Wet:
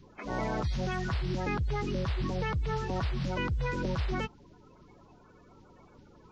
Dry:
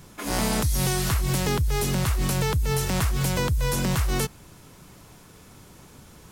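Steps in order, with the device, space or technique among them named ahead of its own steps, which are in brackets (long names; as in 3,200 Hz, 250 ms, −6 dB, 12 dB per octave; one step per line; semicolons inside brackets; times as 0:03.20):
clip after many re-uploads (low-pass filter 4,100 Hz 24 dB per octave; spectral magnitudes quantised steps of 30 dB)
level −6.5 dB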